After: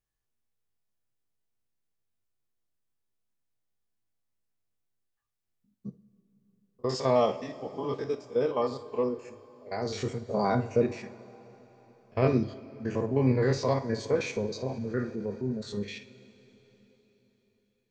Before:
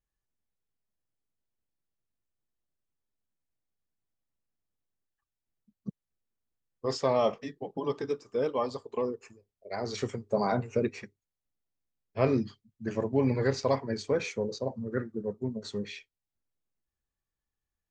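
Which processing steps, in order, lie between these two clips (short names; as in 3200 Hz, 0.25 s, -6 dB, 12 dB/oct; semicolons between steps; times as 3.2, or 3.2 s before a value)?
stepped spectrum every 50 ms; two-slope reverb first 0.33 s, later 4.3 s, from -18 dB, DRR 8 dB; 14.56–15.61 transient shaper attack -3 dB, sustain +3 dB; gain +2 dB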